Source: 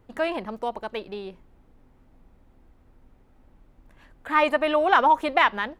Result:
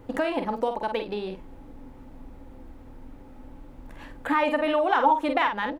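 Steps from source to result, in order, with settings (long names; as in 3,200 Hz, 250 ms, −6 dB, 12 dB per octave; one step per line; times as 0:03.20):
double-tracking delay 48 ms −7 dB
downward compressor 2 to 1, threshold −42 dBFS, peak gain reduction 16 dB
hollow resonant body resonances 280/510/850 Hz, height 10 dB, ringing for 70 ms
level +8.5 dB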